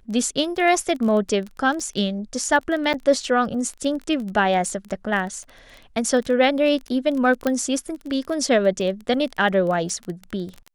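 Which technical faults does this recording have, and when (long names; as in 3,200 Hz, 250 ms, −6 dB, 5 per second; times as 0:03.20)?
surface crackle 19 per second −28 dBFS
0:02.93–0:02.94: drop-out 8.3 ms
0:07.47: click −9 dBFS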